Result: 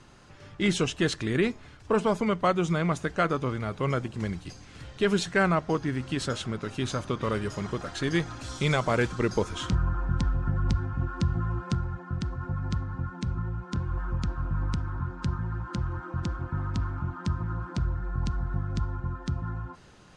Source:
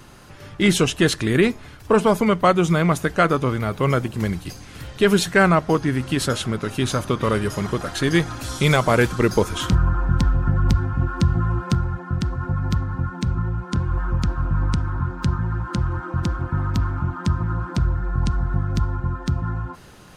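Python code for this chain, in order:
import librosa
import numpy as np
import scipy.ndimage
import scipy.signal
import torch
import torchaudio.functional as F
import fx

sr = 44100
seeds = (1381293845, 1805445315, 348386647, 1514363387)

y = scipy.signal.sosfilt(scipy.signal.butter(4, 8300.0, 'lowpass', fs=sr, output='sos'), x)
y = y * librosa.db_to_amplitude(-8.0)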